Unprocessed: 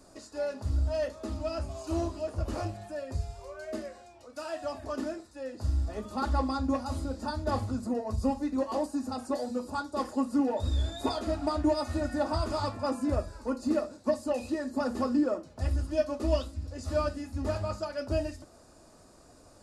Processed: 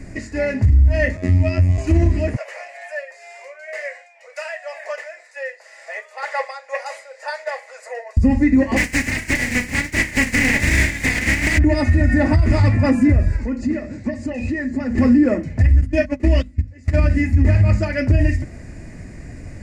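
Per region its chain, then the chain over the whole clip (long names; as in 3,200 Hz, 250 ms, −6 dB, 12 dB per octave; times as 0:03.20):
0:01.17–0:01.78: phases set to zero 90.2 Hz + notch filter 1,500 Hz, Q 8
0:02.36–0:08.17: Butterworth high-pass 500 Hz 72 dB per octave + amplitude tremolo 2 Hz, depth 65%
0:08.76–0:11.57: compressing power law on the bin magnitudes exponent 0.25 + flanger 1.3 Hz, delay 3 ms, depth 1.1 ms, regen +48%
0:13.36–0:14.98: low-pass filter 8,100 Hz 24 dB per octave + downward compressor 2 to 1, threshold −45 dBFS
0:15.81–0:16.96: noise gate −33 dBFS, range −21 dB + low-shelf EQ 110 Hz −9.5 dB + mains-hum notches 50/100/150/200/250 Hz
whole clip: drawn EQ curve 150 Hz 0 dB, 480 Hz −16 dB, 1,300 Hz −23 dB, 2,000 Hz +4 dB, 3,500 Hz −23 dB, 7,200 Hz −18 dB, 11,000 Hz −27 dB; downward compressor, threshold −32 dBFS; boost into a limiter +33 dB; level −5.5 dB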